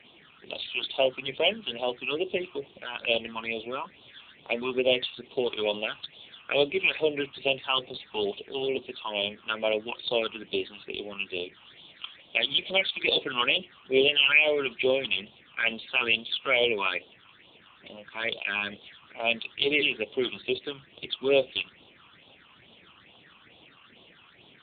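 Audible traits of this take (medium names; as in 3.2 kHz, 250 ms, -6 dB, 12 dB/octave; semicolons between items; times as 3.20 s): a quantiser's noise floor 8-bit, dither triangular; phasing stages 8, 2.3 Hz, lowest notch 540–1800 Hz; AMR-NB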